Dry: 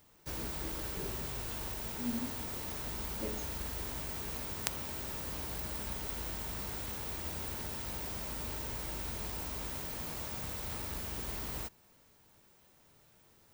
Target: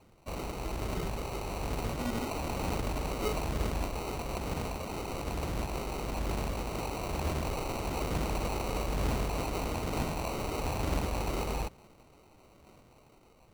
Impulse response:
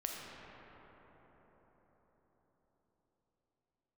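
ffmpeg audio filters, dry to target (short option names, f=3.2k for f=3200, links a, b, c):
-af "aphaser=in_gain=1:out_gain=1:delay=2.6:decay=0.58:speed=1.1:type=sinusoidal,dynaudnorm=f=750:g=5:m=4.5dB,acrusher=samples=26:mix=1:aa=0.000001"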